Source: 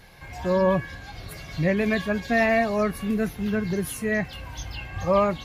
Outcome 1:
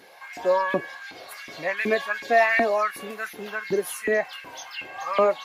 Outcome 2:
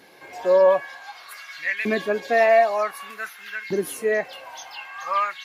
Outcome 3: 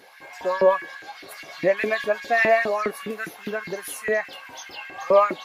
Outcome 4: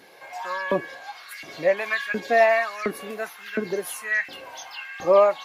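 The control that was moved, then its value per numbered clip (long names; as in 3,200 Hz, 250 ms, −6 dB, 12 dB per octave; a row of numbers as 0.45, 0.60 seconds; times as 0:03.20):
auto-filter high-pass, speed: 2.7, 0.54, 4.9, 1.4 Hertz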